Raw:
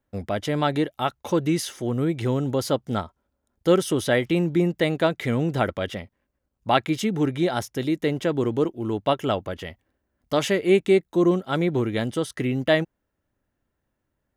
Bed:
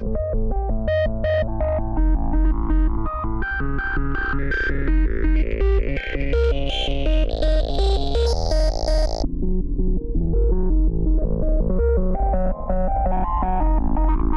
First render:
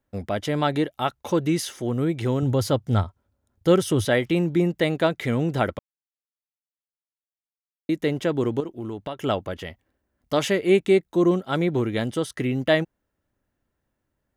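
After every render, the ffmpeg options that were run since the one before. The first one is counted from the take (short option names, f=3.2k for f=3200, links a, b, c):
-filter_complex "[0:a]asettb=1/sr,asplit=3[a][b][c];[a]atrim=end=2.424[d];[b]atrim=start=2.42:end=4.05,asetpts=PTS-STARTPTS,afade=t=in:d=0.004:c=qsin,afade=t=out:st=1.626:d=0.004:c=qsin,equalizer=f=100:t=o:w=0.77:g=13.5[e];[c]atrim=start=4.046[f];[d][e]acrossfade=d=0.004:c1=hsin:c2=qsin[g];[g][f]acrossfade=d=0.004:c1=qsin:c2=hsin,asettb=1/sr,asplit=3[h][i][j];[h]atrim=end=8.604[k];[i]atrim=start=8.6:end=9.21,asetpts=PTS-STARTPTS,afade=t=in:d=0.004:c=qsin,afade=t=out:st=0.606:d=0.004:c=qsin,acompressor=threshold=-28dB:ratio=5:attack=3.2:release=140:knee=1:detection=peak[l];[j]atrim=start=9.206[m];[k][l]acrossfade=d=0.004:c1=hsin:c2=qsin[n];[n][m]acrossfade=d=0.004:c1=qsin:c2=hsin,asplit=3[o][p][q];[o]atrim=end=5.79,asetpts=PTS-STARTPTS,afade=t=out:st=5.786:d=0.004:c=hsin[r];[p]atrim=start=5.79:end=7.89,asetpts=PTS-STARTPTS,volume=0[s];[q]atrim=start=7.89,asetpts=PTS-STARTPTS,afade=t=in:d=0.004:c=hsin[t];[r][s][t]concat=n=3:v=0:a=1"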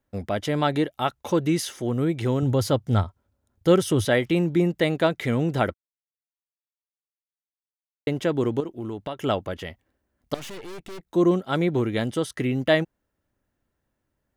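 -filter_complex "[0:a]asettb=1/sr,asplit=3[a][b][c];[a]atrim=end=10.344[d];[b]atrim=start=10.34:end=11.07,asetpts=PTS-STARTPTS,afade=t=in:d=0.004:c=qsin,afade=t=out:st=0.726:d=0.004:c=qsin,aeval=exprs='(tanh(70.8*val(0)+0.75)-tanh(0.75))/70.8':c=same[e];[c]atrim=start=11.066[f];[d][e]acrossfade=d=0.004:c1=hsin:c2=qsin[g];[g][f]acrossfade=d=0.004:c1=qsin:c2=hsin,asplit=3[h][i][j];[h]atrim=end=5.74,asetpts=PTS-STARTPTS,afade=t=out:st=5.736:d=0.004:c=hsin[k];[i]atrim=start=5.74:end=8.07,asetpts=PTS-STARTPTS,volume=0[l];[j]atrim=start=8.07,asetpts=PTS-STARTPTS,afade=t=in:d=0.004:c=hsin[m];[k][l][m]concat=n=3:v=0:a=1"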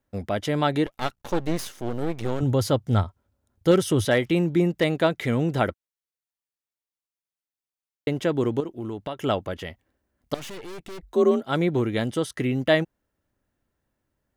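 -filter_complex "[0:a]asettb=1/sr,asplit=3[a][b][c];[a]atrim=end=0.864[d];[b]atrim=start=0.86:end=2.41,asetpts=PTS-STARTPTS,afade=t=in:d=0.004:c=qsin,afade=t=out:st=1.546:d=0.004:c=qsin,aeval=exprs='max(val(0),0)':c=same[e];[c]atrim=start=2.406[f];[d][e]acrossfade=d=0.004:c1=hsin:c2=qsin[g];[g][f]acrossfade=d=0.004:c1=qsin:c2=hsin,asettb=1/sr,asplit=3[h][i][j];[h]atrim=end=3.714[k];[i]atrim=start=3.71:end=4.92,asetpts=PTS-STARTPTS,afade=t=in:d=0.004:c=qsin,afade=t=out:st=1.206:d=0.004:c=qsin,asoftclip=type=hard:threshold=-11.5dB[l];[j]atrim=start=4.916[m];[k][l]acrossfade=d=0.004:c1=hsin:c2=qsin[n];[n][m]acrossfade=d=0.004:c1=qsin:c2=hsin,asplit=3[o][p][q];[o]afade=t=out:st=11.02:d=0.02[r];[p]afreqshift=46,afade=t=in:st=11.02:d=0.02,afade=t=out:st=11.43:d=0.02[s];[q]afade=t=in:st=11.43:d=0.02[t];[r][s][t]amix=inputs=3:normalize=0"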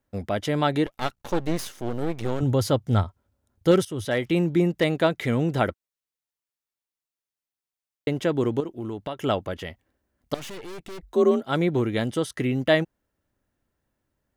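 -filter_complex "[0:a]asplit=2[a][b];[a]atrim=end=3.85,asetpts=PTS-STARTPTS,afade=t=out:st=3.846:d=0.004:c=hsin:silence=0.16788[c];[b]atrim=start=3.85,asetpts=PTS-STARTPTS,afade=t=in:d=0.53:silence=0.16788[d];[c][d]concat=n=2:v=0:a=1"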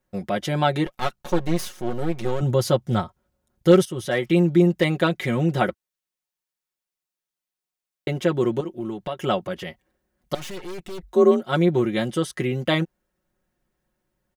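-af "aecho=1:1:5.5:0.76"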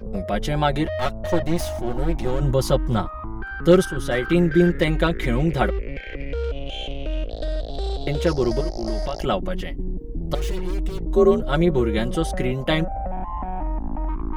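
-filter_complex "[1:a]volume=-7.5dB[a];[0:a][a]amix=inputs=2:normalize=0"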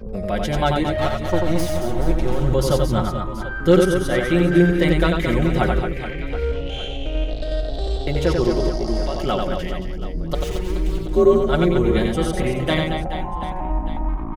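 -af "aecho=1:1:90|225|427.5|731.2|1187:0.631|0.398|0.251|0.158|0.1"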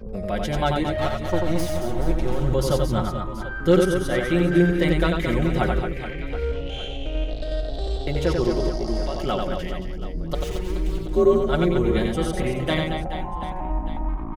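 -af "volume=-3dB"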